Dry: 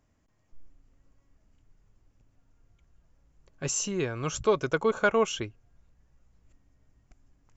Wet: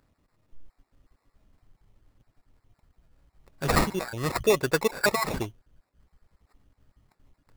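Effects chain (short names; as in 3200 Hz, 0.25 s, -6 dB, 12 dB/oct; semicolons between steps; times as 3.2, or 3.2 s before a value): random spectral dropouts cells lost 30%; high shelf 4600 Hz +10 dB; sample-rate reducer 3100 Hz, jitter 0%; gain +2.5 dB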